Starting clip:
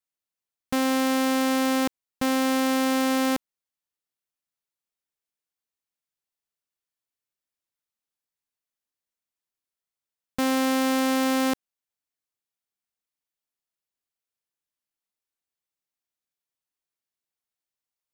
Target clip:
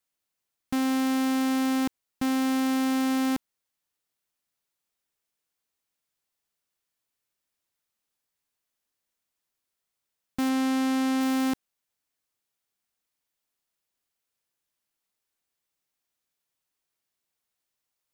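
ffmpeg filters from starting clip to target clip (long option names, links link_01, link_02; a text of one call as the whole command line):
ffmpeg -i in.wav -filter_complex "[0:a]asettb=1/sr,asplit=3[link_01][link_02][link_03];[link_01]atrim=end=10.494[link_04];[link_02]atrim=start=10.49:end=11.21,asetpts=PTS-STARTPTS,afade=type=in:duration=0.004:curve=qsin,afade=type=out:start_time=0.716:duration=0.004:curve=qsin,acrossover=split=5800[link_05][link_06];[link_06]acompressor=threshold=-45dB:ratio=4:attack=1:release=60[link_07];[link_05][link_07]amix=inputs=2:normalize=0[link_08];[link_03]atrim=start=11.206[link_09];[link_04][link_08]acrossfade=duration=0.004:curve1=hsin:curve2=qsin[link_10];[link_10][link_09]acrossfade=duration=0.004:curve1=qsin:curve2=hsin,asoftclip=type=tanh:threshold=-30dB,volume=6.5dB" out.wav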